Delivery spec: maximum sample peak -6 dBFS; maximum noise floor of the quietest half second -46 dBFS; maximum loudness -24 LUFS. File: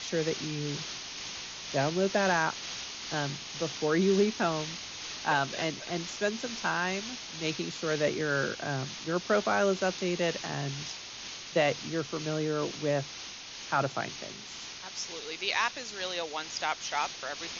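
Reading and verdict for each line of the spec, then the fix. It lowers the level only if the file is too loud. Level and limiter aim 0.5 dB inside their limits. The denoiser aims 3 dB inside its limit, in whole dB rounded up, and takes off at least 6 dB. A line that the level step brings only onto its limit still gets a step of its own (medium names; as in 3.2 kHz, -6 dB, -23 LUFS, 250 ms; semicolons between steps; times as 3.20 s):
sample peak -13.5 dBFS: pass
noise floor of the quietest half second -43 dBFS: fail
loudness -31.5 LUFS: pass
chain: noise reduction 6 dB, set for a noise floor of -43 dBFS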